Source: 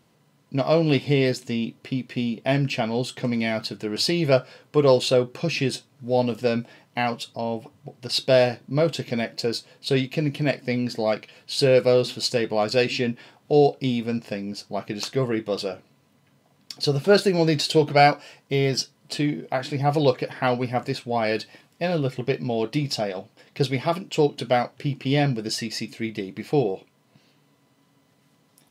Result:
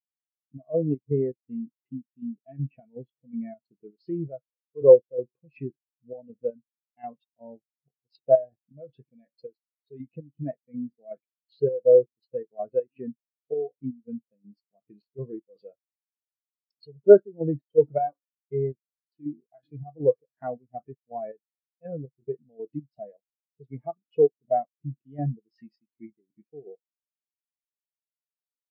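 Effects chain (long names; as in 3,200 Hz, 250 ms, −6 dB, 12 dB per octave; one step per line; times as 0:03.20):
square-wave tremolo 2.7 Hz, depth 60%, duty 55%
dynamic equaliser 1,800 Hz, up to +4 dB, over −38 dBFS, Q 1.2
treble cut that deepens with the level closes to 1,600 Hz, closed at −20.5 dBFS
in parallel at −5.5 dB: bit reduction 6 bits
on the sum: every bin expanded away from the loudest bin 2.5 to 1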